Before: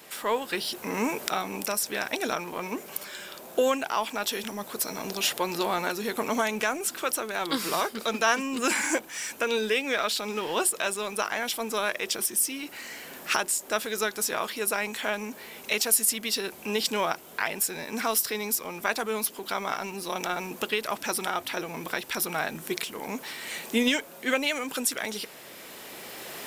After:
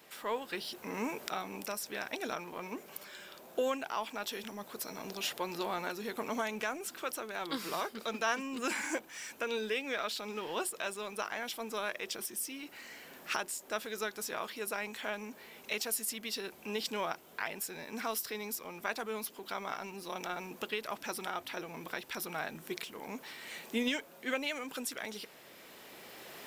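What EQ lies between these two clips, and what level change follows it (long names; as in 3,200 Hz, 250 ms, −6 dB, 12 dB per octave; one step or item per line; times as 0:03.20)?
parametric band 9,600 Hz −5 dB 1.2 octaves
−8.5 dB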